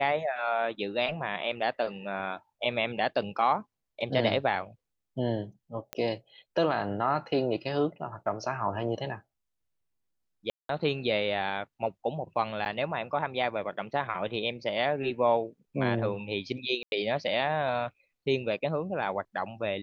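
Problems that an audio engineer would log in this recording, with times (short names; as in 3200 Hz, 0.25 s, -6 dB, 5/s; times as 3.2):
5.93 pop -16 dBFS
10.5–10.69 gap 0.193 s
12.65–12.66 gap 9.2 ms
16.83–16.92 gap 91 ms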